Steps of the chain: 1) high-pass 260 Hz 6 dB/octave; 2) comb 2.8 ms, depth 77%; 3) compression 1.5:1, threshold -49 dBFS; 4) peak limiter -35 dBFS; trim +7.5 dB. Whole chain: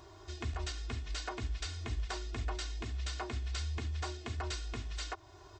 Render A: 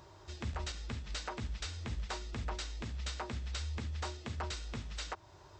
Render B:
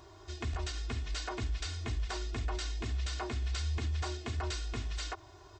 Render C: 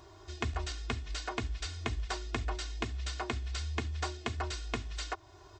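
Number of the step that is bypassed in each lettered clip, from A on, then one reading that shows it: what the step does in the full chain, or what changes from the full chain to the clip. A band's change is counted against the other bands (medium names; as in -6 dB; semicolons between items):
2, crest factor change +2.0 dB; 3, mean gain reduction 4.0 dB; 4, crest factor change +9.5 dB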